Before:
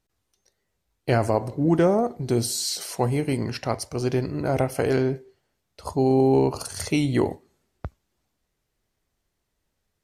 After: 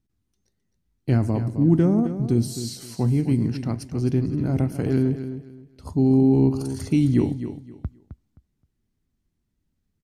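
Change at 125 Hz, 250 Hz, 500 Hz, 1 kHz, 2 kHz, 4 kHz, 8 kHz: +5.5, +4.5, -5.0, -10.0, -8.5, -8.0, -8.0 dB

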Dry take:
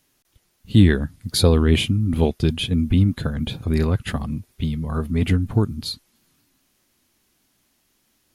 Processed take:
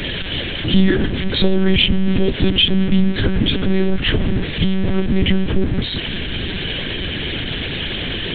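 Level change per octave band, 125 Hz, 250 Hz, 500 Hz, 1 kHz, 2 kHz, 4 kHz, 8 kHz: 0.0 dB, +4.5 dB, +4.0 dB, +2.0 dB, +9.5 dB, +11.0 dB, under -30 dB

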